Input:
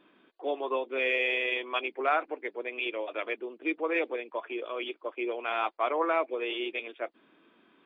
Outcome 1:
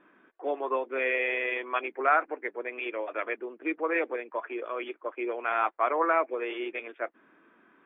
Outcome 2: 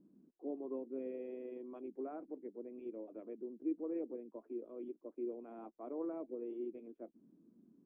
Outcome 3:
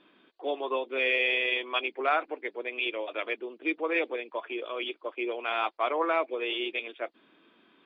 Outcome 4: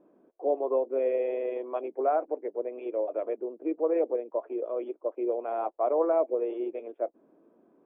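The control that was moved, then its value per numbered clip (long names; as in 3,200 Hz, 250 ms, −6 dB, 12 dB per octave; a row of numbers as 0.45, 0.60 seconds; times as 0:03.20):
low-pass with resonance, frequency: 1,700, 210, 4,600, 600 Hertz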